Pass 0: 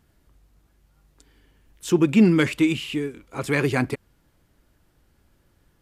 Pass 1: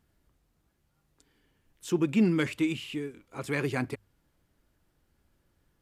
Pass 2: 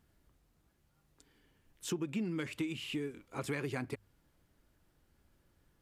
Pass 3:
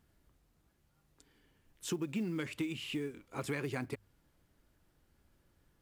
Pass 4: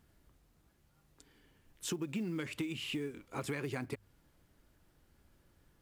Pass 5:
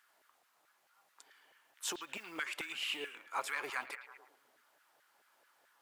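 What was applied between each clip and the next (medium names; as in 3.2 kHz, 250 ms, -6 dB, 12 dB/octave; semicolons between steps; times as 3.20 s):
hum notches 50/100 Hz; trim -8 dB
compression 10:1, threshold -33 dBFS, peak gain reduction 14.5 dB
short-mantissa float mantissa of 4-bit
compression 2:1, threshold -40 dBFS, peak gain reduction 5.5 dB; trim +3 dB
LFO high-pass saw down 4.6 Hz 610–1600 Hz; repeats whose band climbs or falls 110 ms, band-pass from 3 kHz, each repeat -0.7 oct, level -9.5 dB; trim +2 dB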